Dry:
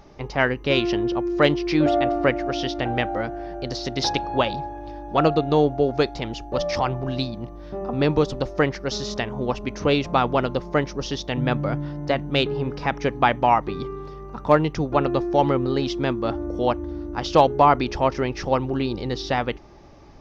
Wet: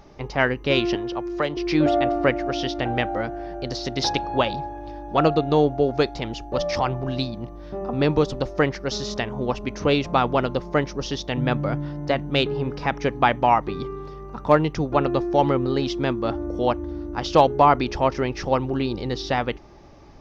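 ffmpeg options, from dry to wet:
-filter_complex "[0:a]asettb=1/sr,asplit=3[a][b][c];[a]atrim=end=0.954[d];[b]atrim=start=0.95:end=1.57,asetpts=PTS-STARTPTS,afade=t=in:d=0.004:c=qsin,afade=t=out:st=0.616:d=0.004:c=qsin,acrossover=split=150|460|1300[e][f][g][h];[e]acompressor=threshold=-42dB:ratio=3[i];[f]acompressor=threshold=-36dB:ratio=3[j];[g]acompressor=threshold=-25dB:ratio=3[k];[h]acompressor=threshold=-33dB:ratio=3[l];[i][j][k][l]amix=inputs=4:normalize=0[m];[c]atrim=start=1.566[n];[d][m]acrossfade=d=0.004:c1=hsin:c2=qsin[o];[o][n]acrossfade=d=0.004:c1=qsin:c2=hsin"

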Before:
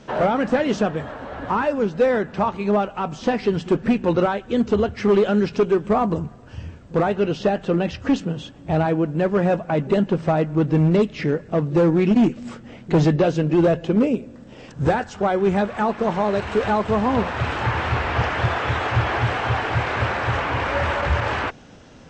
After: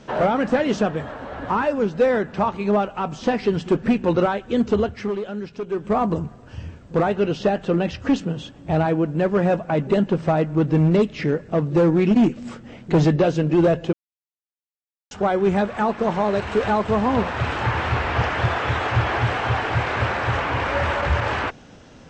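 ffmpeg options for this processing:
-filter_complex "[0:a]asplit=5[a][b][c][d][e];[a]atrim=end=5.15,asetpts=PTS-STARTPTS,afade=t=out:st=4.66:d=0.49:c=qsin:silence=0.281838[f];[b]atrim=start=5.15:end=5.66,asetpts=PTS-STARTPTS,volume=-11dB[g];[c]atrim=start=5.66:end=13.93,asetpts=PTS-STARTPTS,afade=t=in:d=0.49:c=qsin:silence=0.281838,afade=t=out:st=8.266:d=0.004:c=hsin[h];[d]atrim=start=13.93:end=15.11,asetpts=PTS-STARTPTS,volume=0[i];[e]atrim=start=15.11,asetpts=PTS-STARTPTS,afade=t=in:d=0.004:c=hsin[j];[f][g][h][i][j]concat=n=5:v=0:a=1"

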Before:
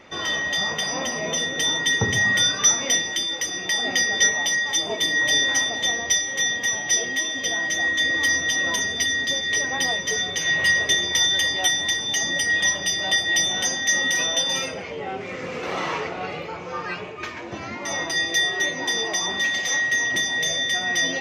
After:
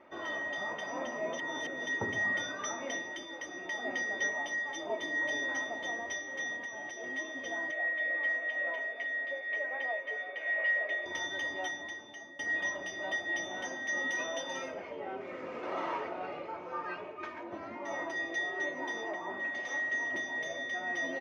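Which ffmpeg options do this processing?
-filter_complex "[0:a]asettb=1/sr,asplit=3[a][b][c];[a]atrim=end=6.564[d];[b]atrim=start=6.56:end=7.04,asetpts=PTS-STARTPTS,afade=t=in:d=0.004:c=qsin,afade=t=out:st=0.476:d=0.004:c=qsin,acompressor=threshold=-26dB:ratio=2.5:attack=3.2:release=140:knee=1:detection=peak[e];[c]atrim=start=7.036[f];[d][e]acrossfade=d=0.004:c1=hsin:c2=qsin[g];[g][f]acrossfade=d=0.004:c1=qsin:c2=hsin,asettb=1/sr,asplit=3[h][i][j];[h]atrim=end=7.714[k];[i]atrim=start=7.71:end=11.06,asetpts=PTS-STARTPTS,afade=t=in:d=0.004:c=qsin,afade=t=out:st=3.346:d=0.004:c=qsin,highpass=f=370:w=0.5412,highpass=f=370:w=1.3066,equalizer=f=370:t=q:w=4:g=-9,equalizer=f=610:t=q:w=4:g=5,equalizer=f=960:t=q:w=4:g=-8,equalizer=f=1.4k:t=q:w=4:g=-3,equalizer=f=2.3k:t=q:w=4:g=7,equalizer=f=3.4k:t=q:w=4:g=-5,lowpass=f=3.5k:w=0.5412,lowpass=f=3.5k:w=1.3066[l];[j]atrim=start=11.056[m];[k][l]acrossfade=d=0.004:c1=hsin:c2=qsin[n];[n][m]acrossfade=d=0.004:c1=qsin:c2=hsin,asettb=1/sr,asplit=3[o][p][q];[o]atrim=end=13.974[r];[p]atrim=start=13.97:end=17.43,asetpts=PTS-STARTPTS,afade=t=in:d=0.004:c=qsin,afade=t=out:st=3.456:d=0.004:c=qsin,highshelf=f=4.1k:g=5.5[s];[q]atrim=start=17.426[t];[r][s]acrossfade=d=0.004:c1=hsin:c2=qsin[u];[u][t]acrossfade=d=0.004:c1=qsin:c2=hsin,asettb=1/sr,asplit=3[v][w][x];[v]atrim=end=19.114[y];[w]atrim=start=19.11:end=19.55,asetpts=PTS-STARTPTS,afade=t=in:d=0.004:c=qsin,afade=t=out:st=0.436:d=0.004:c=qsin,acrossover=split=2600[z][aa];[aa]acompressor=threshold=-41dB:ratio=4:attack=1:release=60[ab];[z][ab]amix=inputs=2:normalize=0[ac];[x]atrim=start=19.546[ad];[y][ac]acrossfade=d=0.004:c1=hsin:c2=qsin[ae];[ae][ad]acrossfade=d=0.004:c1=qsin:c2=hsin,asplit=4[af][ag][ah][ai];[af]atrim=end=1.392[aj];[ag]atrim=start=1.388:end=1.872,asetpts=PTS-STARTPTS,areverse[ak];[ah]atrim=start=1.868:end=12.39,asetpts=PTS-STARTPTS,afade=t=out:st=9.692:d=0.83:silence=0.133352[al];[ai]atrim=start=12.39,asetpts=PTS-STARTPTS,afade=t=in:d=0.004:c=hsin:silence=0.133352[am];[aj][ak]acrossfade=d=0.004:c1=hsin:c2=hsin[an];[al][am]concat=n=2:v=0:a=1[ao];[an][ao]acrossfade=d=0.004:c1=hsin:c2=hsin,lowpass=1k,aemphasis=mode=production:type=riaa,aecho=1:1:3.2:0.42,volume=-5dB"

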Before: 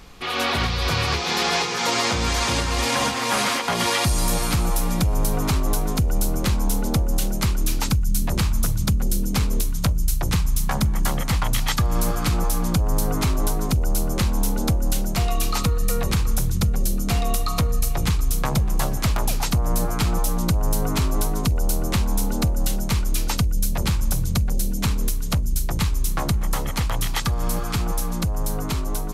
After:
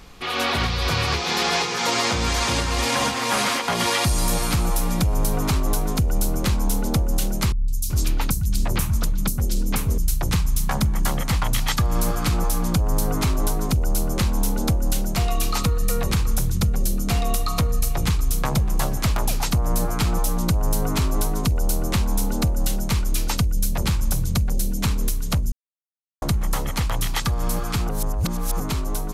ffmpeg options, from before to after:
-filter_complex "[0:a]asettb=1/sr,asplit=3[a][b][c];[a]atrim=end=7.524[d];[b]atrim=start=7.52:end=9.98,asetpts=PTS-STARTPTS,afade=t=in:d=0.004:c=qsin,afade=t=out:st=2.456:d=0.004:c=qsin,acrossover=split=150|4300[e][f][g];[g]adelay=160[h];[f]adelay=380[i];[e][i][h]amix=inputs=3:normalize=0,atrim=end_sample=108486[j];[c]atrim=start=9.976[k];[d][j]acrossfade=d=0.004:c1=hsin:c2=qsin[l];[l][k]acrossfade=d=0.004:c1=qsin:c2=hsin,asplit=5[m][n][o][p][q];[m]atrim=end=25.52,asetpts=PTS-STARTPTS,afade=t=out:st=25.516:d=0.004:c=hsin[r];[n]atrim=start=25.52:end=26.22,asetpts=PTS-STARTPTS,volume=0[s];[o]atrim=start=26.22:end=27.892,asetpts=PTS-STARTPTS,afade=t=in:d=0.004:c=hsin[t];[p]atrim=start=27.888:end=28.602,asetpts=PTS-STARTPTS,areverse[u];[q]atrim=start=28.598[v];[r][s][t]concat=n=3:v=0:a=1[w];[w][u]acrossfade=d=0.004:c1=hsin:c2=hsin[x];[x][v]acrossfade=d=0.004:c1=hsin:c2=hsin"

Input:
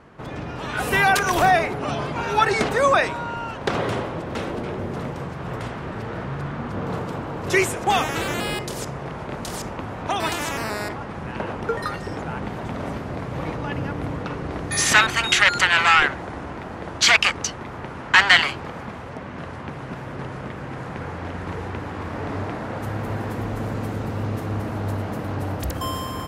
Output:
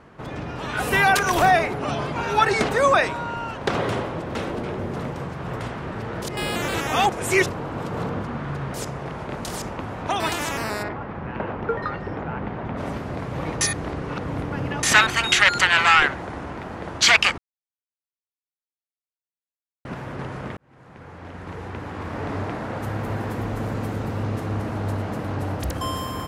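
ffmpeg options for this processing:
-filter_complex "[0:a]asplit=3[a][b][c];[a]afade=t=out:st=10.82:d=0.02[d];[b]lowpass=2.4k,afade=t=in:st=10.82:d=0.02,afade=t=out:st=12.76:d=0.02[e];[c]afade=t=in:st=12.76:d=0.02[f];[d][e][f]amix=inputs=3:normalize=0,asettb=1/sr,asplit=3[g][h][i];[g]atrim=end=24.194[j];[h]atrim=start=24.19:end=25.97,asetpts=PTS-STARTPTS,afade=t=in:d=0.004:c=qsin,afade=t=out:st=1.776:d=0.004:c=qsin,lowpass=12k[k];[i]atrim=start=25.966[l];[j][k]acrossfade=d=0.004:c1=hsin:c2=qsin[m];[m][l]acrossfade=d=0.004:c1=qsin:c2=hsin,asplit=8[n][o][p][q][r][s][t][u];[n]atrim=end=6.222[v];[o]atrim=start=6.218:end=8.742,asetpts=PTS-STARTPTS,areverse[w];[p]atrim=start=8.738:end=13.612[x];[q]atrim=start=13.608:end=14.832,asetpts=PTS-STARTPTS,areverse[y];[r]atrim=start=14.828:end=17.38,asetpts=PTS-STARTPTS,afade=t=out:st=2.548:d=0.004:c=hsin[z];[s]atrim=start=17.38:end=19.85,asetpts=PTS-STARTPTS,volume=0[aa];[t]atrim=start=19.85:end=20.57,asetpts=PTS-STARTPTS,afade=t=in:d=0.004:c=hsin,afade=t=out:st=0.716:d=0.004:c=hsin[ab];[u]atrim=start=20.57,asetpts=PTS-STARTPTS,afade=t=in:d=1.66[ac];[v][w]acrossfade=d=0.004:c1=hsin:c2=hsin[ad];[ad][x]acrossfade=d=0.004:c1=hsin:c2=hsin[ae];[ae][y]acrossfade=d=0.004:c1=hsin:c2=hsin[af];[z][aa][ab][ac]concat=n=4:v=0:a=1[ag];[af][ag]acrossfade=d=0.004:c1=hsin:c2=hsin"

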